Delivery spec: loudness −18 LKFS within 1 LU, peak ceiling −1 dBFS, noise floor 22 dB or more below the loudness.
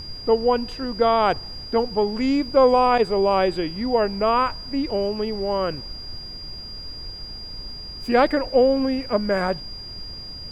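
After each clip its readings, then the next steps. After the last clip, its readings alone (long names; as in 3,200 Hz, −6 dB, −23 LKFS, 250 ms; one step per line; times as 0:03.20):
interfering tone 4,800 Hz; level of the tone −35 dBFS; background noise floor −37 dBFS; target noise floor −43 dBFS; integrated loudness −21.0 LKFS; sample peak −5.5 dBFS; target loudness −18.0 LKFS
→ notch filter 4,800 Hz, Q 30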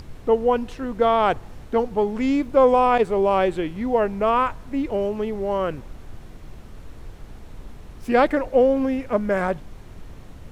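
interfering tone none found; background noise floor −42 dBFS; target noise floor −44 dBFS
→ noise reduction from a noise print 6 dB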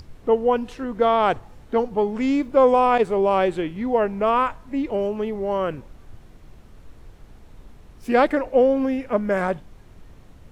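background noise floor −47 dBFS; integrated loudness −21.5 LKFS; sample peak −5.5 dBFS; target loudness −18.0 LKFS
→ level +3.5 dB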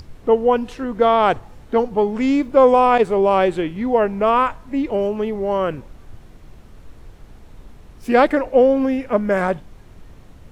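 integrated loudness −18.0 LKFS; sample peak −2.0 dBFS; background noise floor −44 dBFS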